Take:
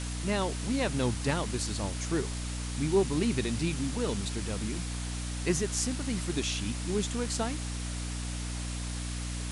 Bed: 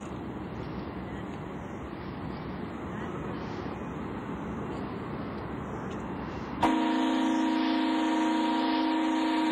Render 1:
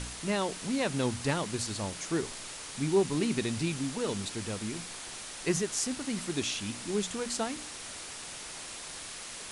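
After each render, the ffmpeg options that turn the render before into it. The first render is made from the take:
ffmpeg -i in.wav -af "bandreject=frequency=60:width_type=h:width=4,bandreject=frequency=120:width_type=h:width=4,bandreject=frequency=180:width_type=h:width=4,bandreject=frequency=240:width_type=h:width=4,bandreject=frequency=300:width_type=h:width=4" out.wav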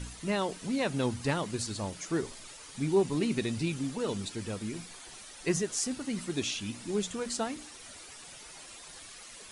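ffmpeg -i in.wav -af "afftdn=noise_reduction=10:noise_floor=-43" out.wav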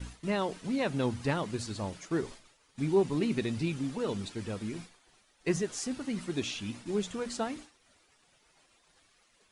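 ffmpeg -i in.wav -af "lowpass=frequency=3700:poles=1,agate=range=-33dB:threshold=-41dB:ratio=3:detection=peak" out.wav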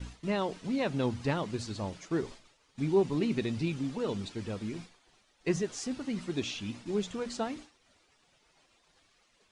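ffmpeg -i in.wav -af "lowpass=7000,equalizer=frequency=1600:width=1.5:gain=-2" out.wav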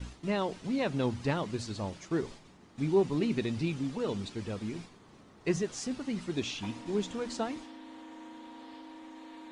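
ffmpeg -i in.wav -i bed.wav -filter_complex "[1:a]volume=-21dB[link_01];[0:a][link_01]amix=inputs=2:normalize=0" out.wav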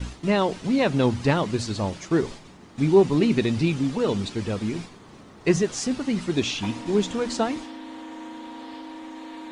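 ffmpeg -i in.wav -af "volume=9.5dB" out.wav

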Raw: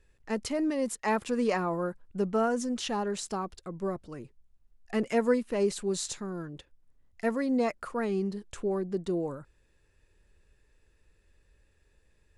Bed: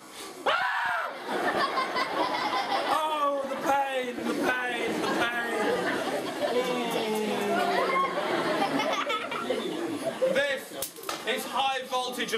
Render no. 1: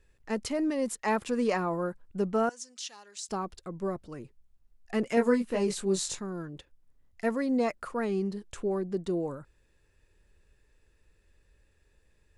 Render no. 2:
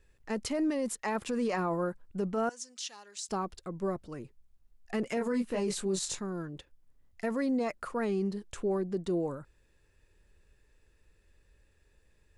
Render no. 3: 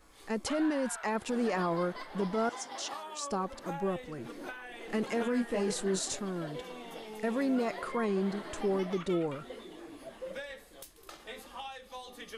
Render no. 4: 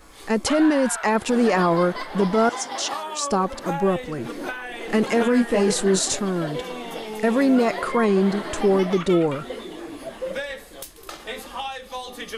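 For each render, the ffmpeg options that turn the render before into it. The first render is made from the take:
ffmpeg -i in.wav -filter_complex "[0:a]asettb=1/sr,asplit=3[link_01][link_02][link_03];[link_01]atrim=end=2.494[link_04];[link_02]atrim=start=2.49:end=3.29,asetpts=PTS-STARTPTS,afade=type=in:duration=0.004:curve=qsin,afade=type=out:start_time=0.796:duration=0.004:curve=qsin,bandpass=frequency=5900:width_type=q:width=1.2[link_05];[link_03]atrim=start=3.286[link_06];[link_04][link_05]acrossfade=duration=0.004:curve1=hsin:curve2=qsin[link_07];[link_07][link_06]acrossfade=duration=0.004:curve1=qsin:curve2=hsin,asettb=1/sr,asplit=3[link_08][link_09][link_10];[link_08]atrim=end=5.154[link_11];[link_09]atrim=start=5.15:end=6.19,asetpts=PTS-STARTPTS,afade=type=in:duration=0.004:curve=qsin,afade=type=out:start_time=1.036:duration=0.004:curve=qsin,asplit=2[link_12][link_13];[link_13]adelay=21,volume=-3.5dB[link_14];[link_12][link_14]amix=inputs=2:normalize=0,atrim=end_sample=45864[link_15];[link_10]atrim=start=6.186[link_16];[link_11][link_15]acrossfade=duration=0.004:curve1=hsin:curve2=qsin[link_17];[link_17][link_16]acrossfade=duration=0.004:curve1=qsin:curve2=hsin" out.wav
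ffmpeg -i in.wav -af "alimiter=limit=-23.5dB:level=0:latency=1:release=26" out.wav
ffmpeg -i in.wav -i bed.wav -filter_complex "[1:a]volume=-16dB[link_01];[0:a][link_01]amix=inputs=2:normalize=0" out.wav
ffmpeg -i in.wav -af "volume=12dB" out.wav

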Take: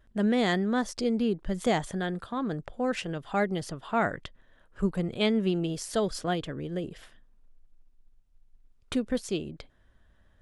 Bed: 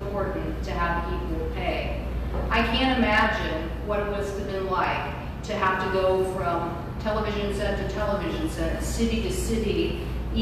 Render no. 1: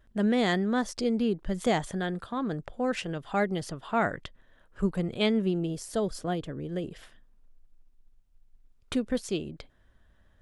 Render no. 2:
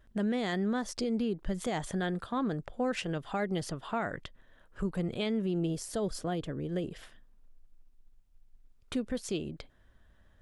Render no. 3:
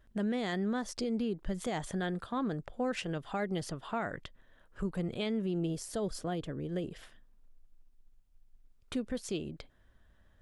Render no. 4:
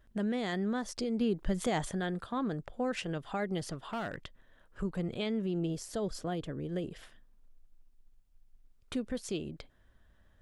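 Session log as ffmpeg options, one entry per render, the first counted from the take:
ffmpeg -i in.wav -filter_complex "[0:a]asettb=1/sr,asplit=3[link_01][link_02][link_03];[link_01]atrim=end=5.424[link_04];[link_02]atrim=start=5.42:end=6.69,asetpts=PTS-STARTPTS,afade=type=in:duration=0.004:curve=qsin,afade=type=out:start_time=1.266:duration=0.004:curve=qsin,equalizer=frequency=2800:width=0.35:gain=-6.5[link_05];[link_03]atrim=start=6.686[link_06];[link_04][link_05]acrossfade=duration=0.004:curve1=hsin:curve2=qsin[link_07];[link_07][link_06]acrossfade=duration=0.004:curve1=qsin:curve2=hsin" out.wav
ffmpeg -i in.wav -af "alimiter=limit=-23.5dB:level=0:latency=1:release=126" out.wav
ffmpeg -i in.wav -af "volume=-2dB" out.wav
ffmpeg -i in.wav -filter_complex "[0:a]asettb=1/sr,asplit=3[link_01][link_02][link_03];[link_01]atrim=end=3.674[link_04];[link_02]atrim=start=3.67:end=4.16,asetpts=PTS-STARTPTS,afade=type=in:duration=0.004:curve=qsin,afade=type=out:start_time=0.486:duration=0.004:curve=qsin,asoftclip=type=hard:threshold=-32dB[link_05];[link_03]atrim=start=4.156[link_06];[link_04][link_05]acrossfade=duration=0.004:curve1=hsin:curve2=qsin[link_07];[link_07][link_06]acrossfade=duration=0.004:curve1=qsin:curve2=hsin,asettb=1/sr,asplit=3[link_08][link_09][link_10];[link_08]atrim=end=4.824[link_11];[link_09]atrim=start=4.82:end=6.26,asetpts=PTS-STARTPTS,afade=type=in:duration=0.004:curve=qsin,afade=type=out:start_time=1.436:duration=0.004:curve=qsin,equalizer=frequency=9700:width=5.3:gain=-8.5[link_12];[link_10]atrim=start=6.256[link_13];[link_11][link_12]acrossfade=duration=0.004:curve1=hsin:curve2=qsin[link_14];[link_14][link_13]acrossfade=duration=0.004:curve1=qsin:curve2=hsin,asplit=3[link_15][link_16][link_17];[link_15]atrim=end=1.212[link_18];[link_16]atrim=start=1.208:end=1.892,asetpts=PTS-STARTPTS,volume=4dB[link_19];[link_17]atrim=start=1.888[link_20];[link_18][link_19]acrossfade=duration=0.004:curve1=hsin:curve2=hsin[link_21];[link_21][link_20]acrossfade=duration=0.004:curve1=hsin:curve2=hsin" out.wav

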